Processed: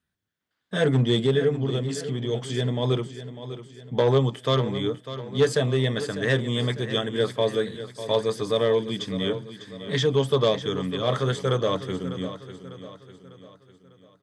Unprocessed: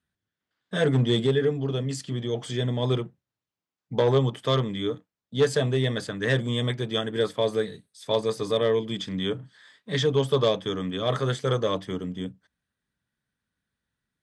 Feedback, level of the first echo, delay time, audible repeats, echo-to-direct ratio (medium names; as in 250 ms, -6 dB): 46%, -12.5 dB, 599 ms, 4, -11.5 dB